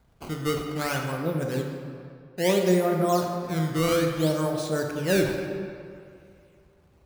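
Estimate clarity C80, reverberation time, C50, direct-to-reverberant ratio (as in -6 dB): 4.5 dB, 2.4 s, 3.5 dB, 2.0 dB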